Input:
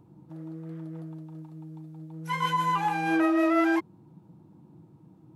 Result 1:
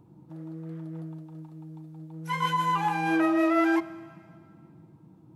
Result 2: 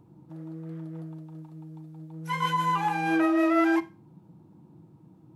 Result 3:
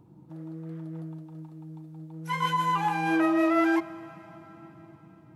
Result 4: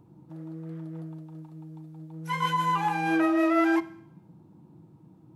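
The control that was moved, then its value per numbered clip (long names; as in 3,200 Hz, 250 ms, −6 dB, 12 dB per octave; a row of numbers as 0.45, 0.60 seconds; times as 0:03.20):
four-comb reverb, RT60: 2.1, 0.32, 4.4, 0.72 seconds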